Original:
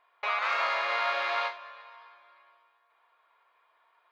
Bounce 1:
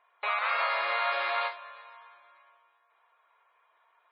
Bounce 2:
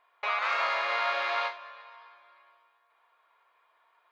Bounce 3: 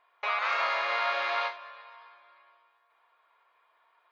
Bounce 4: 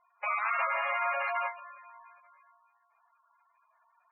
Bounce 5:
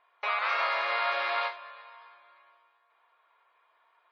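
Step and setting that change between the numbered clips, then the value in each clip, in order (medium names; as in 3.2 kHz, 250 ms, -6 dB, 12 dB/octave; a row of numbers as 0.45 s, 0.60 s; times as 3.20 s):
spectral gate, under each frame's peak: -25 dB, -60 dB, -45 dB, -10 dB, -35 dB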